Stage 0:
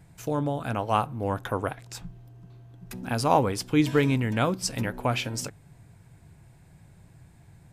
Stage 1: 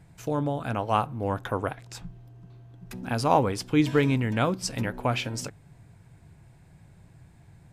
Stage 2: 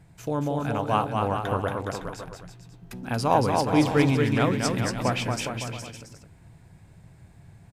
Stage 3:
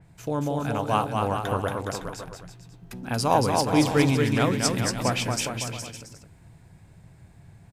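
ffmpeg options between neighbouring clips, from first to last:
ffmpeg -i in.wav -af "highshelf=frequency=8800:gain=-7" out.wav
ffmpeg -i in.wav -af "aecho=1:1:230|414|561.2|679|773.2:0.631|0.398|0.251|0.158|0.1" out.wav
ffmpeg -i in.wav -af "adynamicequalizer=threshold=0.00708:dfrequency=4000:dqfactor=0.7:tfrequency=4000:tqfactor=0.7:attack=5:release=100:ratio=0.375:range=3.5:mode=boostabove:tftype=highshelf" out.wav

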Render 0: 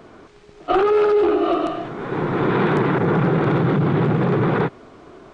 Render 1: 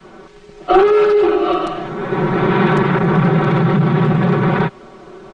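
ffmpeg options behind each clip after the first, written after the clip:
ffmpeg -i in.wav -af "adynamicequalizer=threshold=0.0447:dfrequency=380:dqfactor=0.8:tfrequency=380:tqfactor=0.8:attack=5:release=100:ratio=0.375:range=2.5:mode=cutabove:tftype=bell,aecho=1:1:5.3:0.92,volume=3dB" out.wav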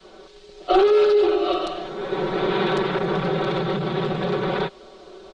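ffmpeg -i in.wav -af "equalizer=frequency=125:width_type=o:width=1:gain=-11,equalizer=frequency=250:width_type=o:width=1:gain=-6,equalizer=frequency=500:width_type=o:width=1:gain=5,equalizer=frequency=1000:width_type=o:width=1:gain=-4,equalizer=frequency=2000:width_type=o:width=1:gain=-5,equalizer=frequency=4000:width_type=o:width=1:gain=10,volume=-5dB" out.wav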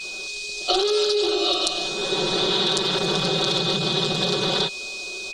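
ffmpeg -i in.wav -af "aexciter=amount=15.8:drive=4:freq=3500,aeval=exprs='val(0)+0.0251*sin(2*PI*2500*n/s)':channel_layout=same,acompressor=threshold=-18dB:ratio=6" out.wav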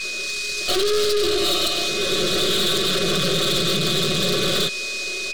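ffmpeg -i in.wav -af "aeval=exprs='(tanh(20*val(0)+0.65)-tanh(0.65))/20':channel_layout=same,asuperstop=centerf=870:order=8:qfactor=2.4,volume=8.5dB" out.wav

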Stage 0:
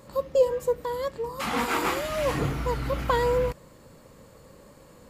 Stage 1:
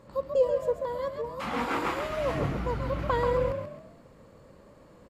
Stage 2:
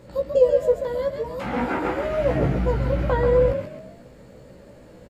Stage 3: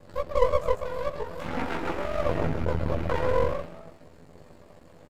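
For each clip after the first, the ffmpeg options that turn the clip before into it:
ffmpeg -i in.wav -filter_complex "[0:a]lowpass=frequency=2400:poles=1,asplit=2[link_01][link_02];[link_02]asplit=4[link_03][link_04][link_05][link_06];[link_03]adelay=135,afreqshift=45,volume=-6.5dB[link_07];[link_04]adelay=270,afreqshift=90,volume=-15.6dB[link_08];[link_05]adelay=405,afreqshift=135,volume=-24.7dB[link_09];[link_06]adelay=540,afreqshift=180,volume=-33.9dB[link_10];[link_07][link_08][link_09][link_10]amix=inputs=4:normalize=0[link_11];[link_01][link_11]amix=inputs=2:normalize=0,volume=-3dB" out.wav
ffmpeg -i in.wav -filter_complex "[0:a]equalizer=frequency=1100:width_type=o:width=0.35:gain=-12,acrossover=split=1800[link_01][link_02];[link_02]acompressor=threshold=-54dB:ratio=6[link_03];[link_01][link_03]amix=inputs=2:normalize=0,asplit=2[link_04][link_05];[link_05]adelay=16,volume=-4dB[link_06];[link_04][link_06]amix=inputs=2:normalize=0,volume=6.5dB" out.wav
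ffmpeg -i in.wav -filter_complex "[0:a]aeval=exprs='val(0)*sin(2*PI*23*n/s)':channel_layout=same,asplit=2[link_01][link_02];[link_02]adelay=12,volume=-3.5dB[link_03];[link_01][link_03]amix=inputs=2:normalize=0,aeval=exprs='max(val(0),0)':channel_layout=same" out.wav

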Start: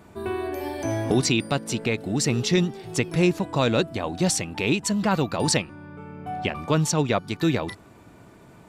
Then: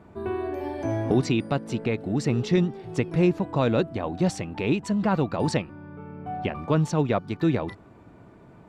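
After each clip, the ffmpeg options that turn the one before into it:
ffmpeg -i in.wav -af "lowpass=frequency=1300:poles=1" out.wav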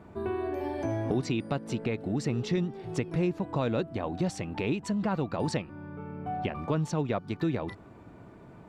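ffmpeg -i in.wav -af "acompressor=threshold=-30dB:ratio=2" out.wav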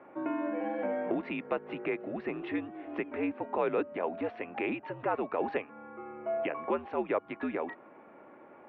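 ffmpeg -i in.wav -af "highpass=frequency=400:width_type=q:width=0.5412,highpass=frequency=400:width_type=q:width=1.307,lowpass=frequency=2700:width_type=q:width=0.5176,lowpass=frequency=2700:width_type=q:width=0.7071,lowpass=frequency=2700:width_type=q:width=1.932,afreqshift=-74,volume=2.5dB" out.wav

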